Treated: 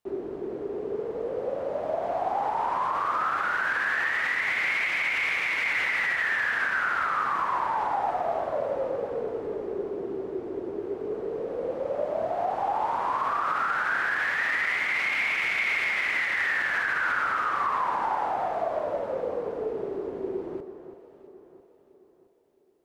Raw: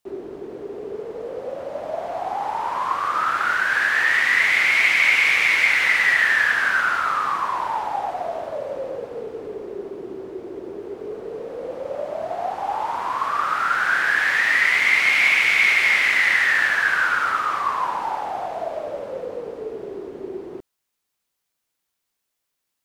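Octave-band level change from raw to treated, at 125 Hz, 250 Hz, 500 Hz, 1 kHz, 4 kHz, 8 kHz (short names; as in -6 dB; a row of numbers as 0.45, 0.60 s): n/a, 0.0 dB, 0.0 dB, -3.5 dB, -10.5 dB, under -10 dB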